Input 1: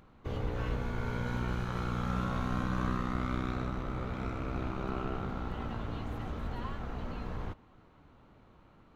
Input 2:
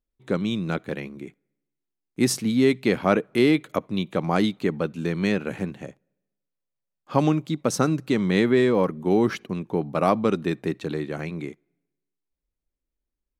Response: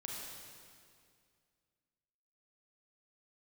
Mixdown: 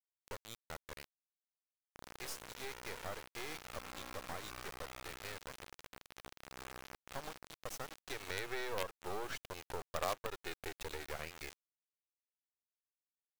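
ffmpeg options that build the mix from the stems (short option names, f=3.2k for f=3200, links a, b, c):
-filter_complex "[0:a]highpass=590,tiltshelf=f=1.2k:g=5,adelay=1700,volume=-7dB[a];[1:a]highpass=f=510:w=0.5412,highpass=f=510:w=1.3066,asoftclip=type=tanh:threshold=-12dB,afade=t=in:st=7.84:d=0.65:silence=0.251189[b];[a][b]amix=inputs=2:normalize=0,acrusher=bits=4:dc=4:mix=0:aa=0.000001,acompressor=threshold=-40dB:ratio=2.5"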